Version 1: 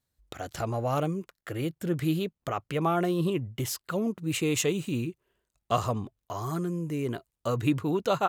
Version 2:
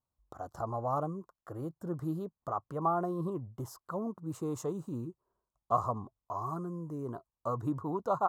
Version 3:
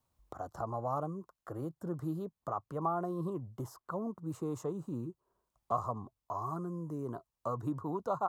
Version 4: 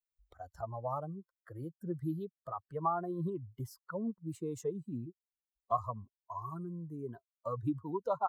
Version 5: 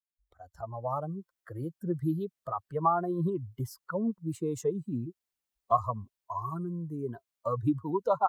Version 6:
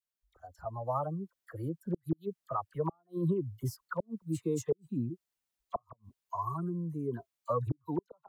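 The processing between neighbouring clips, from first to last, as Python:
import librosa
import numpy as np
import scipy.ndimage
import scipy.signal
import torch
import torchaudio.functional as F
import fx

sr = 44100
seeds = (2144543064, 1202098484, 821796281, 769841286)

y1 = fx.curve_eq(x, sr, hz=(460.0, 1100.0, 2400.0, 5300.0), db=(0, 10, -28, -9))
y1 = y1 * 10.0 ** (-8.0 / 20.0)
y2 = fx.band_squash(y1, sr, depth_pct=40)
y2 = y2 * 10.0 ** (-2.0 / 20.0)
y3 = fx.bin_expand(y2, sr, power=2.0)
y3 = y3 * 10.0 ** (4.0 / 20.0)
y4 = fx.fade_in_head(y3, sr, length_s=1.19)
y4 = y4 * 10.0 ** (6.5 / 20.0)
y5 = fx.gate_flip(y4, sr, shuts_db=-20.0, range_db=-42)
y5 = fx.dispersion(y5, sr, late='lows', ms=41.0, hz=1500.0)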